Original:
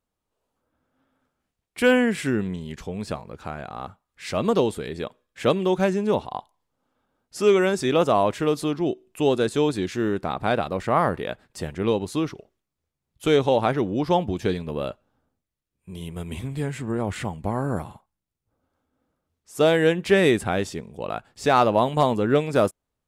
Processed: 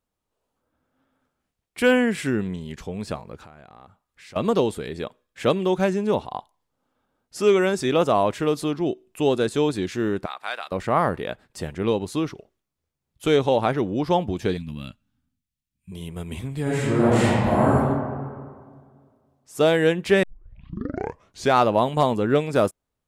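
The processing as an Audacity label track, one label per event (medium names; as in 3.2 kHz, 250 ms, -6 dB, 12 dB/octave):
3.440000	4.360000	compression 3:1, threshold -47 dBFS
10.260000	10.720000	high-pass 1.3 kHz
14.570000	15.920000	FFT filter 260 Hz 0 dB, 420 Hz -26 dB, 2.6 kHz -1 dB
16.620000	17.720000	reverb throw, RT60 1.9 s, DRR -8.5 dB
20.230000	20.230000	tape start 1.33 s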